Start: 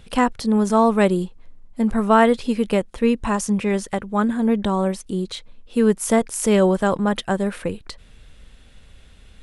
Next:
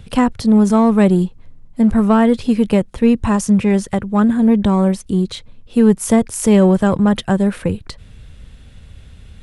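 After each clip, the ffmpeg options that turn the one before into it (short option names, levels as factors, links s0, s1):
-filter_complex "[0:a]equalizer=f=100:t=o:w=2.1:g=12,acrossover=split=350[s0][s1];[s1]acompressor=threshold=0.178:ratio=3[s2];[s0][s2]amix=inputs=2:normalize=0,asplit=2[s3][s4];[s4]volume=4.73,asoftclip=hard,volume=0.211,volume=0.316[s5];[s3][s5]amix=inputs=2:normalize=0"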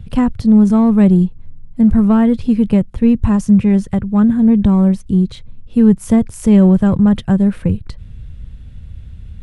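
-af "bass=f=250:g=13,treble=f=4000:g=-4,volume=0.531"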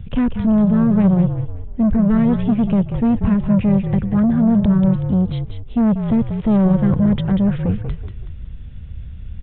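-filter_complex "[0:a]aresample=8000,asoftclip=type=tanh:threshold=0.266,aresample=44100,asplit=5[s0][s1][s2][s3][s4];[s1]adelay=188,afreqshift=-45,volume=0.422[s5];[s2]adelay=376,afreqshift=-90,volume=0.16[s6];[s3]adelay=564,afreqshift=-135,volume=0.061[s7];[s4]adelay=752,afreqshift=-180,volume=0.0232[s8];[s0][s5][s6][s7][s8]amix=inputs=5:normalize=0"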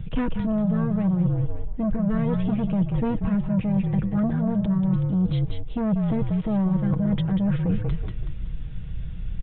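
-af "aecho=1:1:6.3:0.59,areverse,acompressor=threshold=0.0891:ratio=6,areverse,volume=1.12"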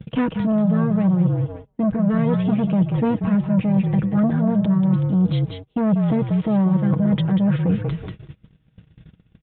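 -af "highpass=130,agate=range=0.0562:threshold=0.0126:ratio=16:detection=peak,volume=1.88"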